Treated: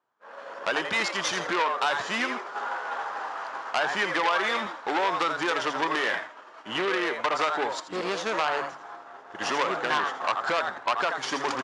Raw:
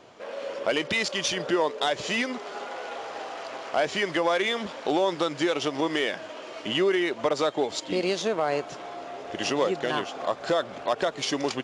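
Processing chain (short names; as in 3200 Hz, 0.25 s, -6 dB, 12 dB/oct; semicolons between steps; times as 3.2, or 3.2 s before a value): HPF 100 Hz; band shelf 1200 Hz +12 dB 1.3 oct; de-hum 143.7 Hz, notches 2; frequency-shifting echo 83 ms, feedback 36%, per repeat +120 Hz, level -7 dB; compressor, threshold -18 dBFS, peak gain reduction 6.5 dB; expander -22 dBFS; core saturation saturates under 2600 Hz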